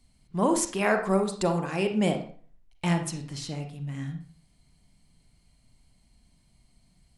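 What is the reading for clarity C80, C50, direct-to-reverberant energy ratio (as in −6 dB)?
12.5 dB, 7.5 dB, 5.5 dB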